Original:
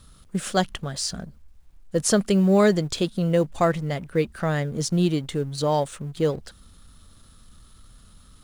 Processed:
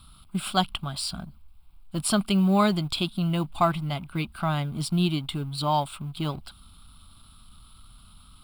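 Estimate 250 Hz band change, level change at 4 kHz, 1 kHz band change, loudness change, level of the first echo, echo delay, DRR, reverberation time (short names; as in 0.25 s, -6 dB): -2.5 dB, +2.0 dB, +1.5 dB, -3.0 dB, none, none, none, none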